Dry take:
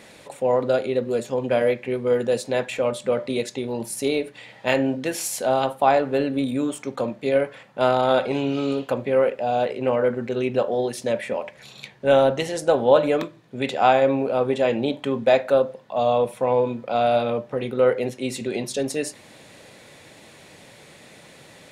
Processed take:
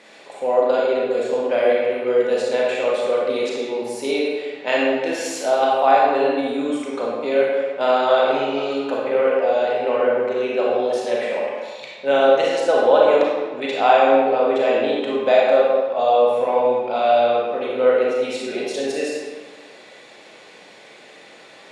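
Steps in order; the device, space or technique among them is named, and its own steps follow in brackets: supermarket ceiling speaker (BPF 330–6000 Hz; reverb RT60 1.5 s, pre-delay 30 ms, DRR -4 dB); gain -1 dB

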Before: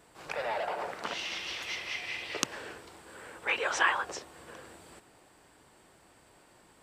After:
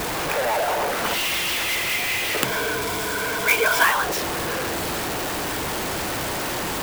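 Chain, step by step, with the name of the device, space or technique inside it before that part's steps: 2.44–3.84 ripple EQ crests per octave 1.7, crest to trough 16 dB; early CD player with a faulty converter (zero-crossing step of -25 dBFS; clock jitter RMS 0.029 ms); gain +4.5 dB

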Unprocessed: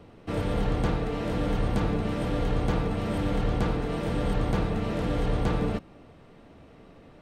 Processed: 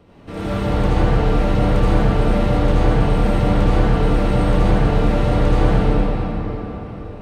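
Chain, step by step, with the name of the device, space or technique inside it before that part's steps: cathedral (reverb RT60 4.5 s, pre-delay 63 ms, DRR -10.5 dB); gain -1 dB

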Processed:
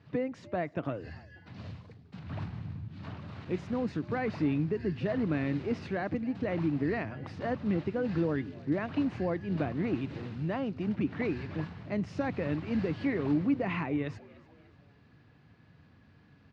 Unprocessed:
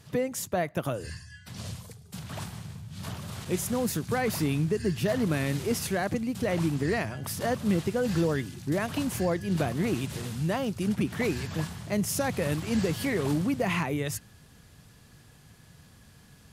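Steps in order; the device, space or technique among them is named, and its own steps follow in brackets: 2.26–2.88 low shelf 160 Hz +10 dB; frequency-shifting delay pedal into a guitar cabinet (frequency-shifting echo 0.295 s, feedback 42%, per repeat +93 Hz, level -22 dB; speaker cabinet 80–3600 Hz, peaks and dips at 88 Hz +4 dB, 290 Hz +7 dB, 3300 Hz -7 dB); gain -5 dB

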